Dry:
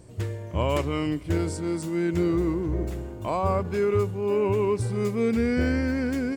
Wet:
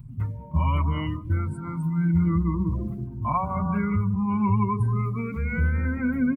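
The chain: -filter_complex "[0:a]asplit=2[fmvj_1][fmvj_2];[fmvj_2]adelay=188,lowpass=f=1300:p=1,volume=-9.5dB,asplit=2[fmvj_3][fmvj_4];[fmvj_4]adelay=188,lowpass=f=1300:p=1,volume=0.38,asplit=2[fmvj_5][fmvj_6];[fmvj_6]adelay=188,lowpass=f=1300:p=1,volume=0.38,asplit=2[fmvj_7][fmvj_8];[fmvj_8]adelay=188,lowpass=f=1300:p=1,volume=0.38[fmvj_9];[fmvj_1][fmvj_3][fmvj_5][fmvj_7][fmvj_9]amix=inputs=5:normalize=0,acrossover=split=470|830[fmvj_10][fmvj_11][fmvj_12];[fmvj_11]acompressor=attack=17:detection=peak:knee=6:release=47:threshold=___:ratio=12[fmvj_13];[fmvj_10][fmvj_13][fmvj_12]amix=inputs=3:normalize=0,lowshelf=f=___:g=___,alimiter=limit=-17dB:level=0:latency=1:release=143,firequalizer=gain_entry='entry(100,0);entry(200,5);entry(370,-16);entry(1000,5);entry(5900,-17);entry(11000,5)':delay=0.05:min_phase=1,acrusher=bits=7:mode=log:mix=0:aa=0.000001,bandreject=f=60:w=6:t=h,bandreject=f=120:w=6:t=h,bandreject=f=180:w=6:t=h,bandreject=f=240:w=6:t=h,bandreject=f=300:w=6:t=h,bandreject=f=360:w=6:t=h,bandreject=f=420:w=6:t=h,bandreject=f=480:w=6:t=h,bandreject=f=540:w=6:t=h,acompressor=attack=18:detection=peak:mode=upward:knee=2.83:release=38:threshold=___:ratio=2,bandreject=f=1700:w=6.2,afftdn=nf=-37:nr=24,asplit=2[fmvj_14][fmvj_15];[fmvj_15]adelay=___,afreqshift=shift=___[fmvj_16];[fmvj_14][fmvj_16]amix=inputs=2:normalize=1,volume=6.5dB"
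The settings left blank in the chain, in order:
-43dB, 95, 6, -39dB, 5.3, 0.63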